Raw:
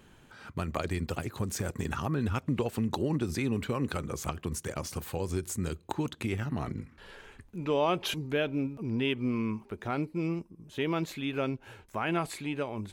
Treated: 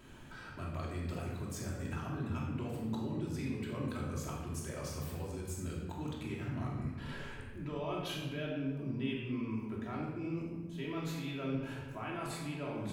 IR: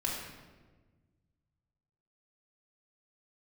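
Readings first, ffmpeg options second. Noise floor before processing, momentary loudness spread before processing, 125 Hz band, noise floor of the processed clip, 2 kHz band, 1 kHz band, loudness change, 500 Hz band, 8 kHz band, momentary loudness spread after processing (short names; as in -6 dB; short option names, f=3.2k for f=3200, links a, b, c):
-58 dBFS, 8 LU, -4.5 dB, -47 dBFS, -8.0 dB, -9.0 dB, -7.0 dB, -9.0 dB, -8.0 dB, 5 LU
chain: -filter_complex "[0:a]alimiter=limit=-22dB:level=0:latency=1:release=472,areverse,acompressor=threshold=-42dB:ratio=4,areverse[a];[1:a]atrim=start_sample=2205[b];[a][b]afir=irnorm=-1:irlink=0,volume=-1dB"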